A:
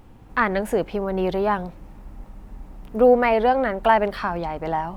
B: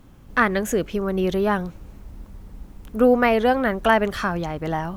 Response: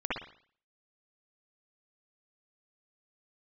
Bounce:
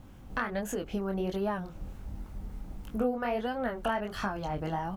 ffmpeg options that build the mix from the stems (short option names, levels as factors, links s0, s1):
-filter_complex "[0:a]acompressor=threshold=0.0447:ratio=6,acrossover=split=970[s0][s1];[s0]aeval=exprs='val(0)*(1-1/2+1/2*cos(2*PI*3.3*n/s))':c=same[s2];[s1]aeval=exprs='val(0)*(1-1/2-1/2*cos(2*PI*3.3*n/s))':c=same[s3];[s2][s3]amix=inputs=2:normalize=0,aecho=1:1:1.4:0.56,volume=0.531[s4];[1:a]acompressor=threshold=0.0282:ratio=3,flanger=delay=20:depth=6.1:speed=1.4,adelay=0.5,volume=1[s5];[s4][s5]amix=inputs=2:normalize=0"